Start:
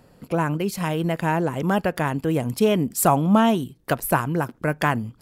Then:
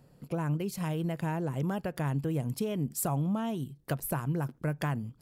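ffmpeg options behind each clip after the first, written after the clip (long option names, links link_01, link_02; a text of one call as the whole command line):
ffmpeg -i in.wav -af "equalizer=frequency=1600:width_type=o:width=2.8:gain=-4,acompressor=threshold=-21dB:ratio=6,equalizer=frequency=140:width_type=o:width=0.27:gain=9.5,volume=-7.5dB" out.wav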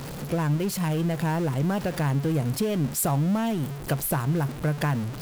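ffmpeg -i in.wav -af "aeval=exprs='val(0)+0.5*0.0178*sgn(val(0))':channel_layout=same,volume=4.5dB" out.wav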